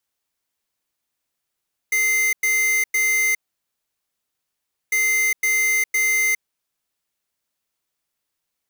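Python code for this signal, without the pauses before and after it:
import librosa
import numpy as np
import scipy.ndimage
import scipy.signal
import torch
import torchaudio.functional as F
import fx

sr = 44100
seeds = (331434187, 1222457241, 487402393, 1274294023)

y = fx.beep_pattern(sr, wave='square', hz=2080.0, on_s=0.41, off_s=0.1, beeps=3, pause_s=1.57, groups=2, level_db=-19.0)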